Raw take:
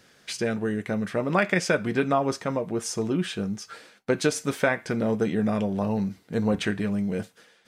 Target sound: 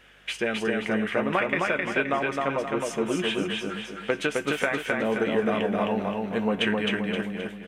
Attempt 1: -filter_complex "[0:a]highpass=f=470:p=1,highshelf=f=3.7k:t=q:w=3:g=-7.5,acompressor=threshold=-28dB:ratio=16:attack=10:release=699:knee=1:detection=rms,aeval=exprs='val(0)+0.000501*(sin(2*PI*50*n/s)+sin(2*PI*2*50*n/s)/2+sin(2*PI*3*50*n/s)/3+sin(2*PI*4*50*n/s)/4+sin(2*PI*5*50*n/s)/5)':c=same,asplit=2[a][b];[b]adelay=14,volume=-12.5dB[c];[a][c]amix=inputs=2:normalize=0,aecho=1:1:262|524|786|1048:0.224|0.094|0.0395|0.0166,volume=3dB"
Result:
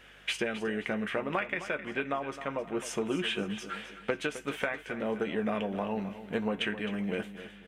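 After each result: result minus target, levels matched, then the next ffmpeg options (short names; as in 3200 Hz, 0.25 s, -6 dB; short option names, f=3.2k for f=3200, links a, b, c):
echo-to-direct -10.5 dB; compressor: peak gain reduction +6 dB
-filter_complex "[0:a]highpass=f=470:p=1,highshelf=f=3.7k:t=q:w=3:g=-7.5,acompressor=threshold=-28dB:ratio=16:attack=10:release=699:knee=1:detection=rms,aeval=exprs='val(0)+0.000501*(sin(2*PI*50*n/s)+sin(2*PI*2*50*n/s)/2+sin(2*PI*3*50*n/s)/3+sin(2*PI*4*50*n/s)/4+sin(2*PI*5*50*n/s)/5)':c=same,asplit=2[a][b];[b]adelay=14,volume=-12.5dB[c];[a][c]amix=inputs=2:normalize=0,aecho=1:1:262|524|786|1048|1310:0.75|0.315|0.132|0.0556|0.0233,volume=3dB"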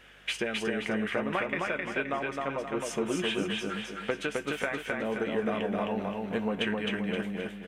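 compressor: peak gain reduction +6 dB
-filter_complex "[0:a]highpass=f=470:p=1,highshelf=f=3.7k:t=q:w=3:g=-7.5,acompressor=threshold=-21.5dB:ratio=16:attack=10:release=699:knee=1:detection=rms,aeval=exprs='val(0)+0.000501*(sin(2*PI*50*n/s)+sin(2*PI*2*50*n/s)/2+sin(2*PI*3*50*n/s)/3+sin(2*PI*4*50*n/s)/4+sin(2*PI*5*50*n/s)/5)':c=same,asplit=2[a][b];[b]adelay=14,volume=-12.5dB[c];[a][c]amix=inputs=2:normalize=0,aecho=1:1:262|524|786|1048|1310:0.75|0.315|0.132|0.0556|0.0233,volume=3dB"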